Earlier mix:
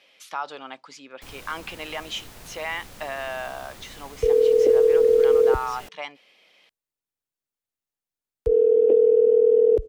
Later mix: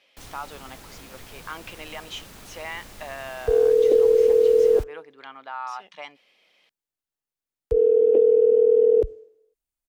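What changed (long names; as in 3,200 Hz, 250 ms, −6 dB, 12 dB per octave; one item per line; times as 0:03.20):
speech −4.5 dB
first sound: entry −1.05 s
second sound: entry −0.75 s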